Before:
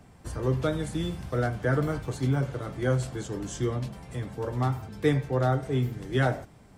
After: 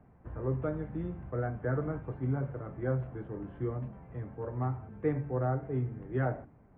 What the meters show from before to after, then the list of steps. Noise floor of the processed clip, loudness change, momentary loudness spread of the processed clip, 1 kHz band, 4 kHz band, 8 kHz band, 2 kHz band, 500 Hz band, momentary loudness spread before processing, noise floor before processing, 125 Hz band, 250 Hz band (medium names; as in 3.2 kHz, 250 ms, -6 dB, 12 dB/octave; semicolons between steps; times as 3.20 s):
-59 dBFS, -6.0 dB, 9 LU, -7.0 dB, under -30 dB, under -35 dB, -10.5 dB, -6.0 dB, 9 LU, -53 dBFS, -6.0 dB, -6.0 dB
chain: wow and flutter 23 cents; Bessel low-pass 1.3 kHz, order 8; de-hum 48.24 Hz, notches 7; trim -5.5 dB